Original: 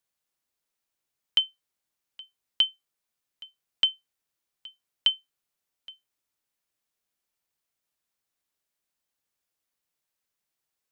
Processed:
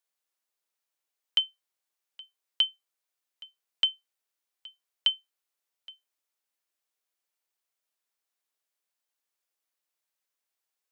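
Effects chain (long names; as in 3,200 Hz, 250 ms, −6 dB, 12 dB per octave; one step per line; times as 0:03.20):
high-pass filter 380 Hz
level −2 dB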